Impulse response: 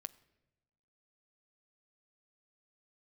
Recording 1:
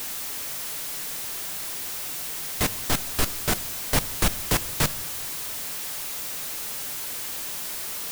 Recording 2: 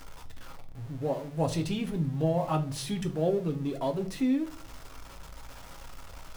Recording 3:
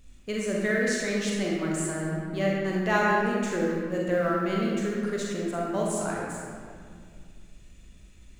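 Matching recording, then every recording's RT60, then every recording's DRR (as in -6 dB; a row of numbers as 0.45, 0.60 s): 1; 1.0, 0.45, 2.1 s; 14.0, 4.0, -3.5 dB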